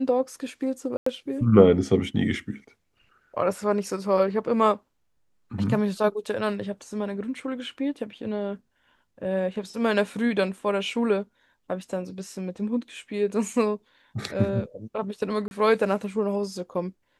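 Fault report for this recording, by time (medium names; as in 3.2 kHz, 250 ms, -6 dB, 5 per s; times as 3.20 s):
0.97–1.06 s: dropout 94 ms
15.48–15.51 s: dropout 31 ms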